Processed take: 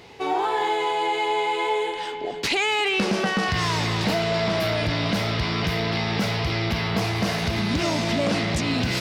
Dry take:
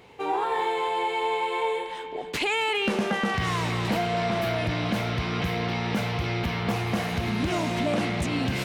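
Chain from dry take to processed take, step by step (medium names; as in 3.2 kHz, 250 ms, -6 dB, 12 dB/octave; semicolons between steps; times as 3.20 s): peaking EQ 5.1 kHz +9.5 dB 0.77 oct; in parallel at -3 dB: peak limiter -25 dBFS, peak gain reduction 10.5 dB; on the sum: speed mistake 25 fps video run at 24 fps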